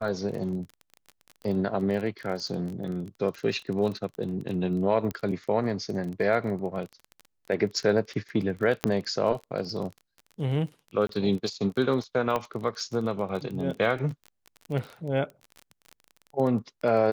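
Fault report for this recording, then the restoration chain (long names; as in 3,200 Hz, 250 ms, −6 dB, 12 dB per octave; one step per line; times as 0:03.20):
surface crackle 24 per second −33 dBFS
0:05.11: click −19 dBFS
0:08.84: click −9 dBFS
0:11.07–0:11.09: drop-out 23 ms
0:12.36: click −15 dBFS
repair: click removal
repair the gap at 0:11.07, 23 ms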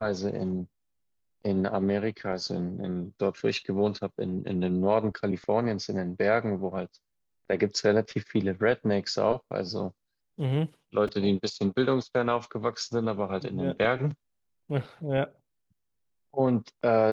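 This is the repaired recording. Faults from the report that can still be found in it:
0:05.11: click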